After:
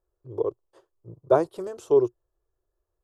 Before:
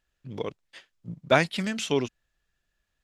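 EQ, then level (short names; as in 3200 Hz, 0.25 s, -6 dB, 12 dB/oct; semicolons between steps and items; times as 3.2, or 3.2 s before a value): EQ curve 120 Hz 0 dB, 220 Hz -22 dB, 360 Hz +11 dB, 760 Hz -1 dB, 1100 Hz +1 dB, 2100 Hz -28 dB, 12000 Hz -6 dB; 0.0 dB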